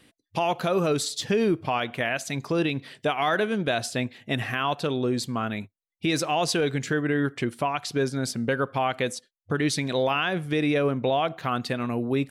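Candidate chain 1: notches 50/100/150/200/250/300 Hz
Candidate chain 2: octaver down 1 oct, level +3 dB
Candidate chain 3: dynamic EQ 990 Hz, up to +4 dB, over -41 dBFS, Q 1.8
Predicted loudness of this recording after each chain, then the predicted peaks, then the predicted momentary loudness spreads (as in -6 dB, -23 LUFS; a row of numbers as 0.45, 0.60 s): -26.5, -25.0, -25.5 LUFS; -13.5, -11.0, -12.0 dBFS; 6, 6, 6 LU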